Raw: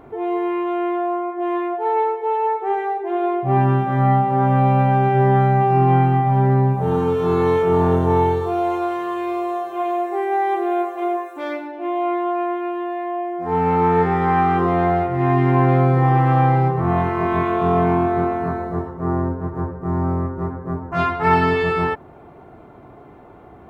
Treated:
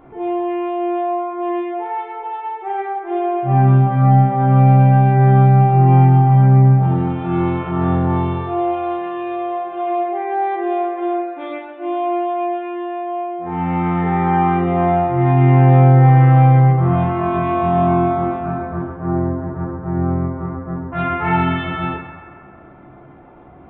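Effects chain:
notch filter 440 Hz, Q 12
feedback echo with a band-pass in the loop 133 ms, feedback 72%, band-pass 1,400 Hz, level −8 dB
convolution reverb RT60 0.50 s, pre-delay 14 ms, DRR 0 dB
downsampling to 8,000 Hz
level −3.5 dB

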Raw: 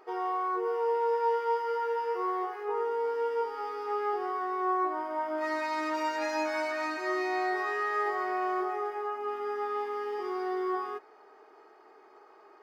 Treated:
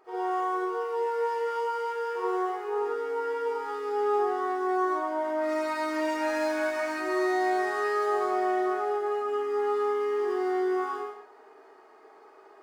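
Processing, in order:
running median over 9 samples
convolution reverb, pre-delay 41 ms, DRR −7.5 dB
level −5 dB

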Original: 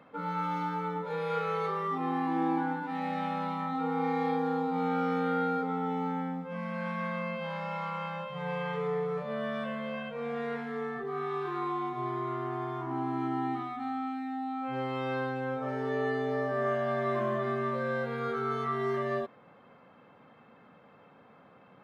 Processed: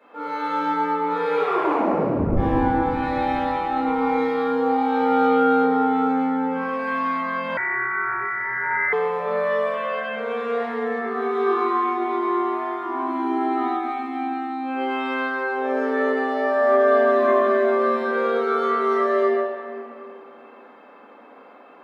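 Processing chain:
Butterworth high-pass 260 Hz 36 dB per octave
0:01.35: tape stop 1.02 s
convolution reverb RT60 2.5 s, pre-delay 5 ms, DRR −13 dB
0:07.57–0:08.93: voice inversion scrambler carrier 2,500 Hz
level −2.5 dB

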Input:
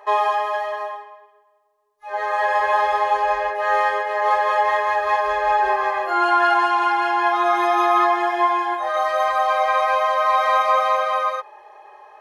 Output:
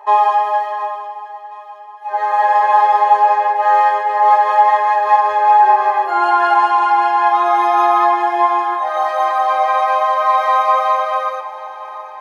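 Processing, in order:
high-pass filter 78 Hz 12 dB per octave
parametric band 890 Hz +14 dB 0.34 octaves
delay that swaps between a low-pass and a high-pass 359 ms, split 890 Hz, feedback 71%, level −11.5 dB
level −1 dB

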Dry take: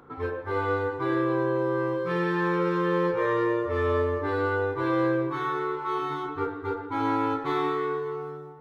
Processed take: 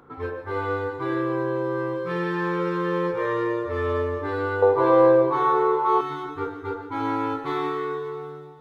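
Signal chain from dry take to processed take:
0:04.62–0:06.01: flat-topped bell 660 Hz +12.5 dB
on a send: delay with a high-pass on its return 146 ms, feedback 68%, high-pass 3,900 Hz, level −9 dB

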